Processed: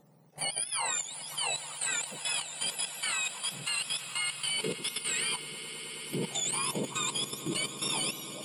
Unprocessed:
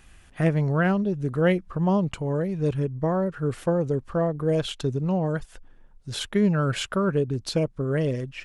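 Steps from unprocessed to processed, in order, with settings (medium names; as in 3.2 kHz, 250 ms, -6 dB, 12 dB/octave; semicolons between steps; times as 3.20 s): spectrum inverted on a logarithmic axis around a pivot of 1.2 kHz; echo with a slow build-up 106 ms, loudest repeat 8, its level -16 dB; level held to a coarse grid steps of 10 dB; trim -1.5 dB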